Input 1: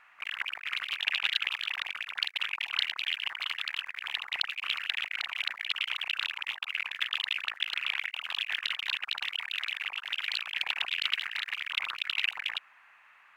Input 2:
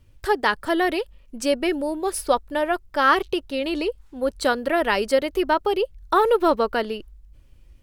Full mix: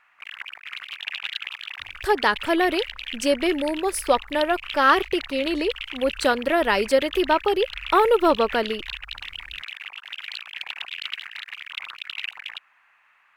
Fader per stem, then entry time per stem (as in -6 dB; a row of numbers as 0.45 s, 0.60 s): -2.0 dB, +0.5 dB; 0.00 s, 1.80 s